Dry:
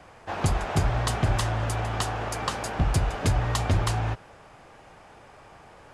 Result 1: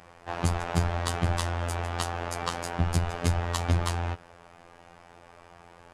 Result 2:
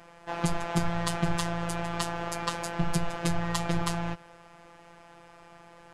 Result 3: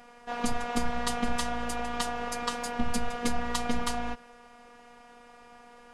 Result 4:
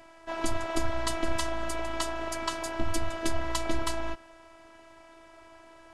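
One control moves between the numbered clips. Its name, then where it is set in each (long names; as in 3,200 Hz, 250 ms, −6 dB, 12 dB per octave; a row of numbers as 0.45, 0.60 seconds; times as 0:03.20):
phases set to zero, frequency: 86, 170, 240, 330 Hertz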